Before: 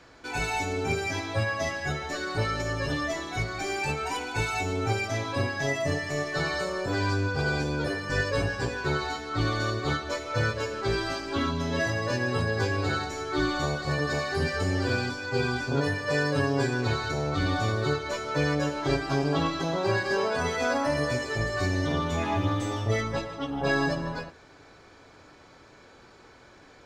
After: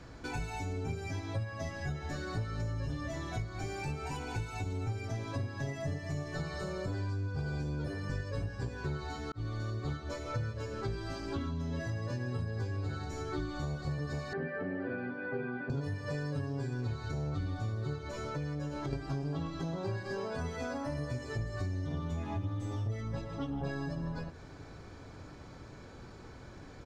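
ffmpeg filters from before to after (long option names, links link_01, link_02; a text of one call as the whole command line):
ffmpeg -i in.wav -filter_complex "[0:a]asplit=3[link_01][link_02][link_03];[link_01]afade=type=out:start_time=1.94:duration=0.02[link_04];[link_02]aecho=1:1:237:0.376,afade=type=in:start_time=1.94:duration=0.02,afade=type=out:start_time=7.06:duration=0.02[link_05];[link_03]afade=type=in:start_time=7.06:duration=0.02[link_06];[link_04][link_05][link_06]amix=inputs=3:normalize=0,asettb=1/sr,asplit=3[link_07][link_08][link_09];[link_07]atrim=end=14.334[link_10];[link_08]atrim=start=14.33:end=15.7,asetpts=PTS-STARTPTS,afade=type=in:duration=0.004:curve=qsin,afade=type=out:start_time=1.366:duration=0.004:curve=qsin,highpass=frequency=180:width=0.5412,highpass=frequency=180:width=1.3066,equalizer=frequency=570:width_type=q:width=4:gain=5,equalizer=frequency=990:width_type=q:width=4:gain=-4,equalizer=frequency=1700:width_type=q:width=4:gain=6,lowpass=frequency=2300:width=0.5412,lowpass=frequency=2300:width=1.3066[link_11];[link_09]atrim=start=15.696[link_12];[link_10][link_11]acrossfade=duration=0.004:curve1=hsin:curve2=qsin[link_13];[link_13][link_12]acrossfade=duration=0.004:curve1=qsin:curve2=hsin,asettb=1/sr,asplit=3[link_14][link_15][link_16];[link_14]atrim=end=18.084[link_17];[link_15]atrim=start=18.08:end=18.93,asetpts=PTS-STARTPTS,afade=type=in:duration=0.004:curve=qsin,afade=type=out:start_time=0.846:duration=0.004:curve=qsin,acompressor=threshold=-30dB:ratio=6:attack=3.2:release=140:knee=1:detection=peak[link_18];[link_16]atrim=start=18.926[link_19];[link_17][link_18]acrossfade=duration=0.004:curve1=hsin:curve2=qsin[link_20];[link_20][link_19]acrossfade=duration=0.004:curve1=qsin:curve2=hsin,asplit=2[link_21][link_22];[link_21]atrim=end=9.32,asetpts=PTS-STARTPTS,afade=type=out:start_time=9.316:duration=0.004:curve=hsin[link_23];[link_22]atrim=start=9.32,asetpts=PTS-STARTPTS,afade=type=in:duration=0.65[link_24];[link_23][link_24]concat=n=2:v=0:a=1,bass=frequency=250:gain=11,treble=frequency=4000:gain=10,acompressor=threshold=-34dB:ratio=6,highshelf=frequency=2900:gain=-12" out.wav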